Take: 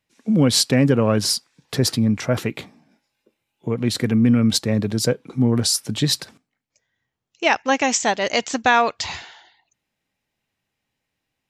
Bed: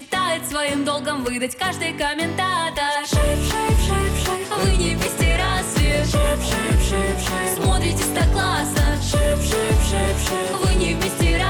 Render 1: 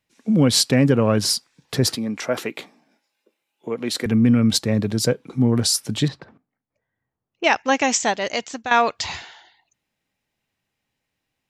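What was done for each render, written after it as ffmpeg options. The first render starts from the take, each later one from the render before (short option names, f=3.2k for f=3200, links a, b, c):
-filter_complex "[0:a]asettb=1/sr,asplit=3[a][b][c];[a]atrim=end=1.954[d];[b]atrim=start=1.95:end=4.06,asetpts=PTS-STARTPTS,afade=t=in:d=0.004:c=qsin,afade=t=out:st=2.106:d=0.004:c=qsin,highpass=310[e];[c]atrim=start=4.056[f];[d][e]acrossfade=d=0.004:c1=hsin:c2=qsin[g];[g][f]acrossfade=d=0.004:c1=qsin:c2=hsin,asettb=1/sr,asplit=3[h][i][j];[h]atrim=end=6.084[k];[i]atrim=start=6.08:end=7.44,asetpts=PTS-STARTPTS,afade=t=in:d=0.004:c=qsin,afade=t=out:st=1.356:d=0.004:c=qsin,lowpass=1.3k[l];[j]atrim=start=7.436[m];[k][l]acrossfade=d=0.004:c1=hsin:c2=qsin[n];[n][m]acrossfade=d=0.004:c1=qsin:c2=hsin,asplit=2[o][p];[o]atrim=end=8.71,asetpts=PTS-STARTPTS,afade=t=out:st=7.98:d=0.73:silence=0.237137[q];[p]atrim=start=8.71,asetpts=PTS-STARTPTS,afade=t=in:d=0.004:c=hsin:silence=0.237137[r];[q][r]concat=n=2:v=0:a=1"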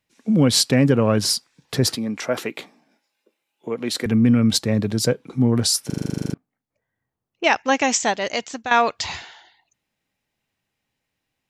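-filter_complex "[0:a]asplit=13[a][b][c][d][e][f][g][h][i][j][k][l][m];[a]atrim=end=5.902[n];[b]atrim=start=5.858:end=5.902[o];[c]atrim=start=5.858:end=5.902[p];[d]atrim=start=5.858:end=5.902[q];[e]atrim=start=5.858:end=5.902[r];[f]atrim=start=5.858:end=5.902[s];[g]atrim=start=5.858:end=5.902[t];[h]atrim=start=5.858:end=5.902[u];[i]atrim=start=5.858:end=5.902[v];[j]atrim=start=5.858:end=5.902[w];[k]atrim=start=5.858:end=5.902[x];[l]atrim=start=5.858:end=5.902[y];[m]atrim=start=6.338[z];[n][o]acrossfade=d=0.004:c1=hsin:c2=hsin[aa];[aa][p]acrossfade=d=0.004:c1=hsin:c2=hsin[ab];[ab][q]acrossfade=d=0.004:c1=hsin:c2=hsin[ac];[ac][r]acrossfade=d=0.004:c1=hsin:c2=hsin[ad];[ad][s]acrossfade=d=0.004:c1=hsin:c2=hsin[ae];[ae][t]acrossfade=d=0.004:c1=hsin:c2=hsin[af];[af][u]acrossfade=d=0.004:c1=hsin:c2=hsin[ag];[ag][v]acrossfade=d=0.004:c1=hsin:c2=hsin[ah];[ah][w]acrossfade=d=0.004:c1=hsin:c2=hsin[ai];[ai][x]acrossfade=d=0.004:c1=hsin:c2=hsin[aj];[aj][y]acrossfade=d=0.004:c1=hsin:c2=hsin[ak];[ak][z]acrossfade=d=0.004:c1=hsin:c2=hsin"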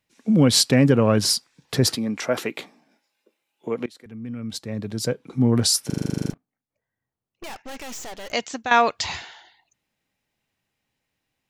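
-filter_complex "[0:a]asettb=1/sr,asplit=3[a][b][c];[a]atrim=end=6.304[d];[b]atrim=start=6.3:end=8.33,asetpts=PTS-STARTPTS,afade=t=in:d=0.004:c=qsin,afade=t=out:st=2.026:d=0.004:c=qsin,aeval=exprs='(tanh(56.2*val(0)+0.8)-tanh(0.8))/56.2':c=same[e];[c]atrim=start=8.326[f];[d][e]acrossfade=d=0.004:c1=hsin:c2=qsin[g];[g][f]acrossfade=d=0.004:c1=qsin:c2=hsin,asplit=2[h][i];[h]atrim=end=3.86,asetpts=PTS-STARTPTS,afade=t=out:st=3.856:d=0.004:c=hsin:silence=0.0707946[j];[i]atrim=start=3.86,asetpts=PTS-STARTPTS,afade=t=in:d=1.68:c=qua:silence=0.0707946[k];[j][k]concat=n=2:v=0:a=1"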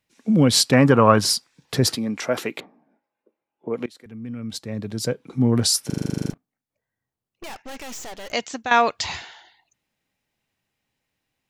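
-filter_complex "[0:a]asettb=1/sr,asplit=3[a][b][c];[a]atrim=end=0.734[d];[b]atrim=start=0.73:end=1.21,asetpts=PTS-STARTPTS,afade=t=in:d=0.004:c=qsin,afade=t=out:st=0.476:d=0.004:c=qsin,equalizer=f=1.1k:t=o:w=1.2:g=12.5[e];[c]atrim=start=1.206[f];[d][e]acrossfade=d=0.004:c1=hsin:c2=qsin[g];[g][f]acrossfade=d=0.004:c1=qsin:c2=hsin,asettb=1/sr,asplit=3[h][i][j];[h]atrim=end=2.604[k];[i]atrim=start=2.6:end=3.74,asetpts=PTS-STARTPTS,afade=t=in:d=0.004:c=qsin,afade=t=out:st=1.136:d=0.004:c=qsin,lowpass=1.1k[l];[j]atrim=start=3.736[m];[k][l]acrossfade=d=0.004:c1=hsin:c2=qsin[n];[n][m]acrossfade=d=0.004:c1=qsin:c2=hsin"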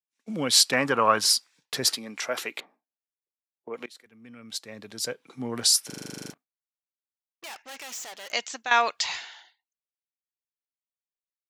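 -af "highpass=f=1.3k:p=1,agate=range=-33dB:threshold=-49dB:ratio=3:detection=peak"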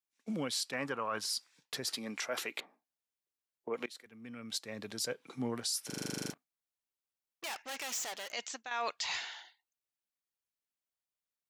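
-af "areverse,acompressor=threshold=-29dB:ratio=8,areverse,alimiter=level_in=1dB:limit=-24dB:level=0:latency=1:release=263,volume=-1dB"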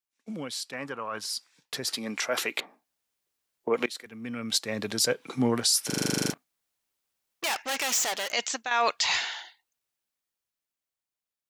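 -af "dynaudnorm=f=390:g=11:m=11.5dB"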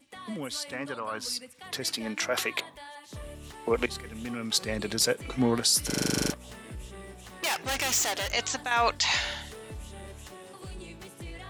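-filter_complex "[1:a]volume=-24dB[a];[0:a][a]amix=inputs=2:normalize=0"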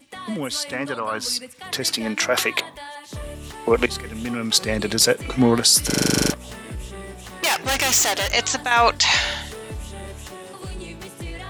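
-af "volume=8.5dB"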